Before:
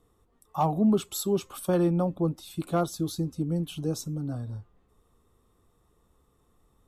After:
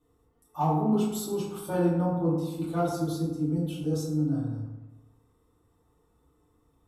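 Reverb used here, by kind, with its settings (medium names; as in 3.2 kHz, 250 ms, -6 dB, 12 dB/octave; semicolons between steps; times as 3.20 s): FDN reverb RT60 1.1 s, low-frequency decay 1.05×, high-frequency decay 0.45×, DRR -9.5 dB; trim -11.5 dB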